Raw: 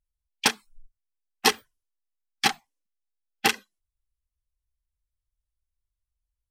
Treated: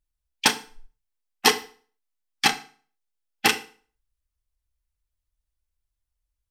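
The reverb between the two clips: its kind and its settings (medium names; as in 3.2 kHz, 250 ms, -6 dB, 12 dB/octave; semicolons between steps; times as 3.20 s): FDN reverb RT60 0.43 s, low-frequency decay 1×, high-frequency decay 0.9×, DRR 7.5 dB; trim +2 dB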